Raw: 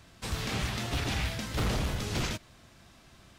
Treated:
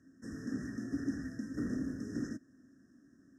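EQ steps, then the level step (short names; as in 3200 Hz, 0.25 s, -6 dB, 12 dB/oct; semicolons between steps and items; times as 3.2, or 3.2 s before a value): vowel filter i; brick-wall FIR band-stop 1900–5100 Hz; +9.0 dB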